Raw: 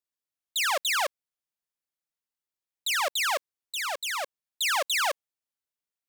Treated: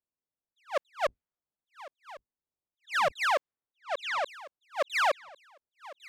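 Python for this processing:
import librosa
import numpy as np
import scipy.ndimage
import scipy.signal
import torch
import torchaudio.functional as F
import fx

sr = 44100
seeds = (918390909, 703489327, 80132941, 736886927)

y = fx.octave_divider(x, sr, octaves=2, level_db=-6.0, at=(1.06, 3.12))
y = fx.high_shelf(y, sr, hz=7400.0, db=-8.5)
y = fx.env_lowpass(y, sr, base_hz=880.0, full_db=-26.0)
y = fx.high_shelf(y, sr, hz=3100.0, db=-11.0)
y = fx.echo_feedback(y, sr, ms=1102, feedback_pct=22, wet_db=-20)
y = fx.attack_slew(y, sr, db_per_s=360.0)
y = F.gain(torch.from_numpy(y), 3.5).numpy()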